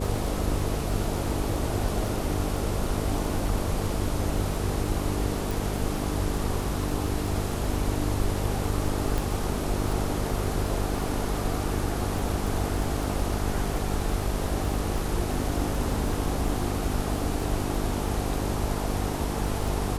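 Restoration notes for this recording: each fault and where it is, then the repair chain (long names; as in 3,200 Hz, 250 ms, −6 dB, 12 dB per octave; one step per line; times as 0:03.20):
mains buzz 50 Hz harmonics 9 −31 dBFS
surface crackle 21 per second −30 dBFS
0:05.51: click
0:09.18: click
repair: click removal
hum removal 50 Hz, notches 9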